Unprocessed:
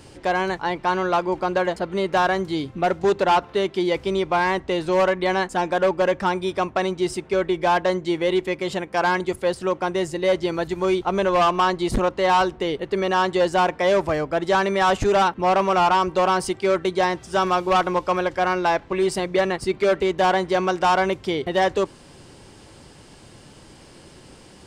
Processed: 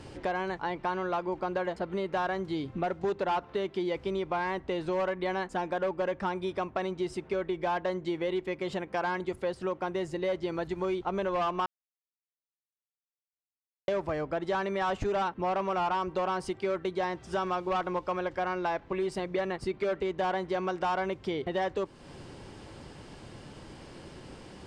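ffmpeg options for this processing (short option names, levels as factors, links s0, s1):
-filter_complex "[0:a]asplit=3[s0][s1][s2];[s0]atrim=end=11.66,asetpts=PTS-STARTPTS,afade=t=out:st=11.656:d=0.004:c=hsin[s3];[s1]atrim=start=11.66:end=13.88,asetpts=PTS-STARTPTS,volume=0[s4];[s2]atrim=start=13.88,asetpts=PTS-STARTPTS,afade=t=in:d=0.004:c=hsin[s5];[s3][s4][s5]concat=n=3:v=0:a=1,aemphasis=mode=reproduction:type=50kf,acompressor=threshold=0.0224:ratio=2.5"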